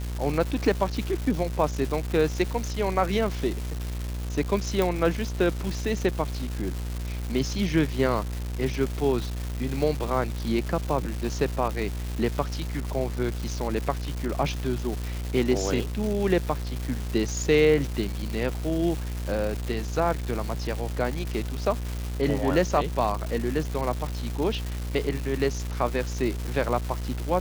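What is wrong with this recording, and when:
buzz 60 Hz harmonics 34 -31 dBFS
crackle 510 per s -30 dBFS
4.82 s: pop

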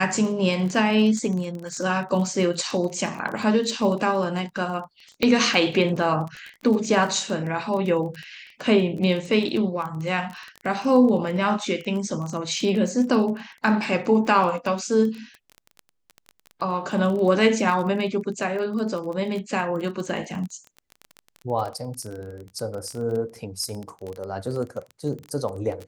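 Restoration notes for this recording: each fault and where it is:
crackle 21 per s -29 dBFS
5.23 s: pop -9 dBFS

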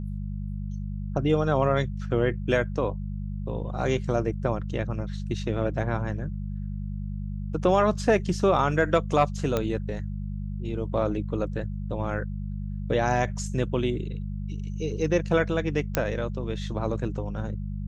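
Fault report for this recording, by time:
hum 50 Hz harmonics 4 -32 dBFS
9.57 s: pop -12 dBFS
15.95 s: pop -7 dBFS

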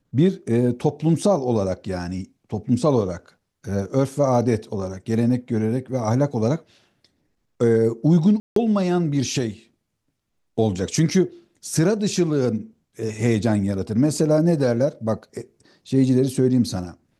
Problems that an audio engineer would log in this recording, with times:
8.40–8.56 s: dropout 163 ms

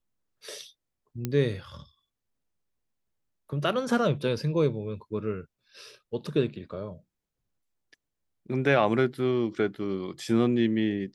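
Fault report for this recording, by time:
1.25 s: pop -15 dBFS

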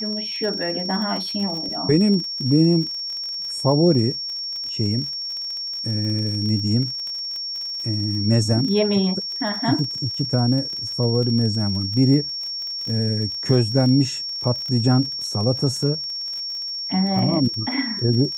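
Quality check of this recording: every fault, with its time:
crackle 38 per s -29 dBFS
whine 5.5 kHz -26 dBFS

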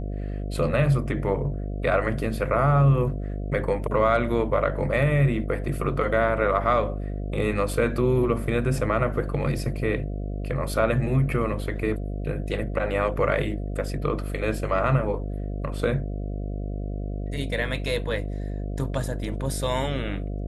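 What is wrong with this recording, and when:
buzz 50 Hz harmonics 14 -30 dBFS

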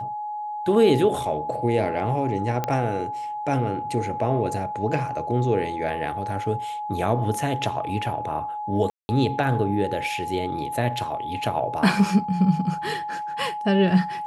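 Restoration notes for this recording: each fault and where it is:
whine 840 Hz -28 dBFS
2.64 s: pop -11 dBFS
8.90–9.09 s: dropout 190 ms

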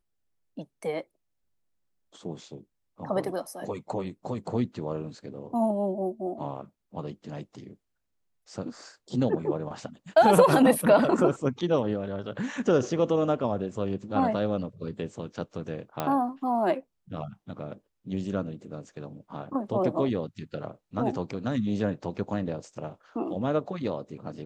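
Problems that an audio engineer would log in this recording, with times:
16.00 s: pop -14 dBFS

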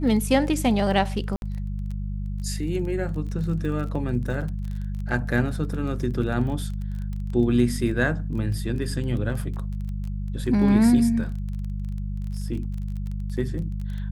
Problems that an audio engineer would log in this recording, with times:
crackle 21 per s -32 dBFS
hum 50 Hz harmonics 4 -29 dBFS
1.36–1.42 s: dropout 61 ms

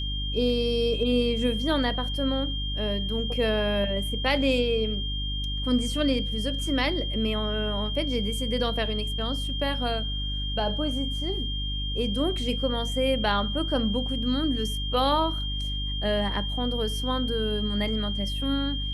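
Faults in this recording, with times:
hum 50 Hz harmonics 6 -31 dBFS
whine 3.2 kHz -32 dBFS

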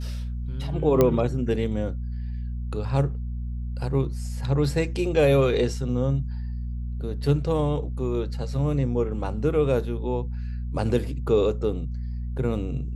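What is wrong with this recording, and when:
hum 60 Hz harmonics 4 -30 dBFS
1.01 s: pop -7 dBFS

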